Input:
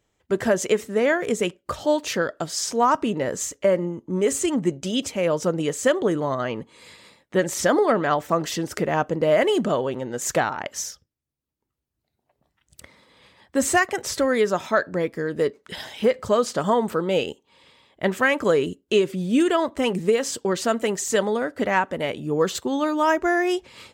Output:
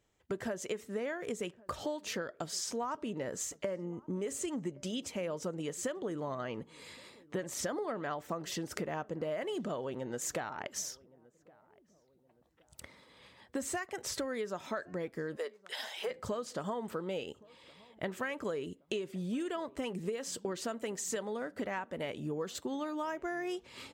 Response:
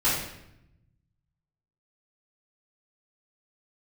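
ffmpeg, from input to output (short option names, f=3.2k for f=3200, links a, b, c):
-filter_complex "[0:a]asplit=3[a][b][c];[a]afade=t=out:st=15.35:d=0.02[d];[b]highpass=f=510:w=0.5412,highpass=f=510:w=1.3066,afade=t=in:st=15.35:d=0.02,afade=t=out:st=16.09:d=0.02[e];[c]afade=t=in:st=16.09:d=0.02[f];[d][e][f]amix=inputs=3:normalize=0,acompressor=threshold=-30dB:ratio=6,asplit=2[g][h];[h]adelay=1119,lowpass=f=1.1k:p=1,volume=-23dB,asplit=2[i][j];[j]adelay=1119,lowpass=f=1.1k:p=1,volume=0.42,asplit=2[k][l];[l]adelay=1119,lowpass=f=1.1k:p=1,volume=0.42[m];[g][i][k][m]amix=inputs=4:normalize=0,volume=-4.5dB"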